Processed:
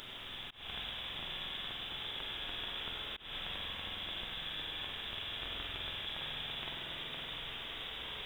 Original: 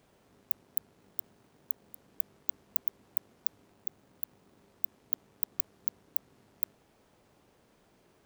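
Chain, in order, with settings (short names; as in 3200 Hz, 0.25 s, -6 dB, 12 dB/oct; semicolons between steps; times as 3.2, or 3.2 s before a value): reverse delay 0.605 s, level -2 dB; high shelf 2300 Hz +9.5 dB; notches 50/100 Hz; inverted band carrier 3700 Hz; in parallel at -9.5 dB: companded quantiser 6-bit; on the sum: low shelf 92 Hz +9 dB; spring tank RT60 2.8 s, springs 47 ms, chirp 60 ms, DRR -0.5 dB; auto swell 0.191 s; gain +13.5 dB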